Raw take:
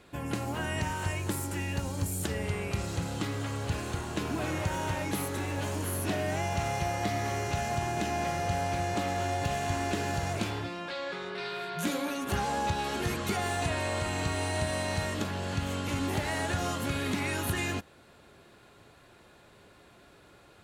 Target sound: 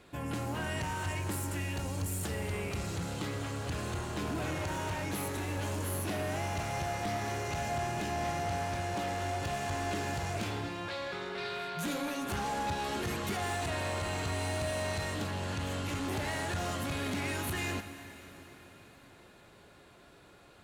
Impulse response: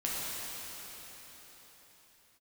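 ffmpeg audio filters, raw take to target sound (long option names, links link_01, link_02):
-filter_complex "[0:a]aeval=exprs='0.119*(cos(1*acos(clip(val(0)/0.119,-1,1)))-cos(1*PI/2))+0.00668*(cos(7*acos(clip(val(0)/0.119,-1,1)))-cos(7*PI/2))':channel_layout=same,asoftclip=type=tanh:threshold=-34dB,asplit=2[link_01][link_02];[1:a]atrim=start_sample=2205,adelay=24[link_03];[link_02][link_03]afir=irnorm=-1:irlink=0,volume=-16dB[link_04];[link_01][link_04]amix=inputs=2:normalize=0,volume=3dB"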